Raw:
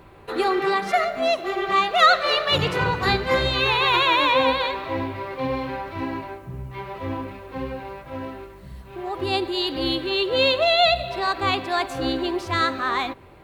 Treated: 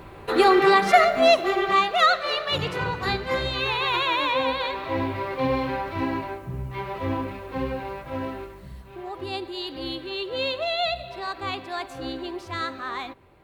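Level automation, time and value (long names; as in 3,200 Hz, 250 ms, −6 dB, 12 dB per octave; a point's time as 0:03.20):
0:01.34 +5 dB
0:02.19 −5 dB
0:04.49 −5 dB
0:05.11 +2 dB
0:08.42 +2 dB
0:09.32 −8 dB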